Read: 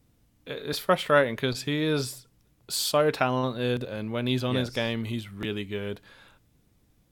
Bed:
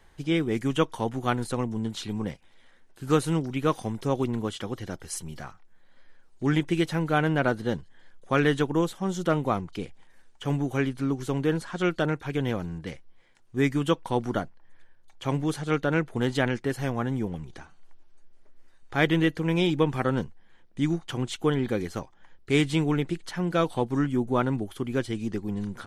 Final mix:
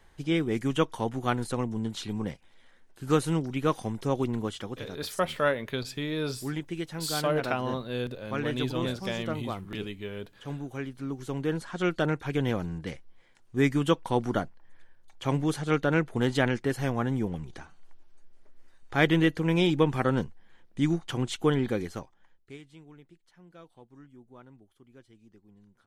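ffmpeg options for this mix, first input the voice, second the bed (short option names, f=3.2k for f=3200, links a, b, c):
-filter_complex "[0:a]adelay=4300,volume=-5dB[a];[1:a]volume=8dB,afade=t=out:st=4.43:d=0.59:silence=0.398107,afade=t=in:st=10.9:d=1.35:silence=0.334965,afade=t=out:st=21.56:d=1.02:silence=0.0473151[b];[a][b]amix=inputs=2:normalize=0"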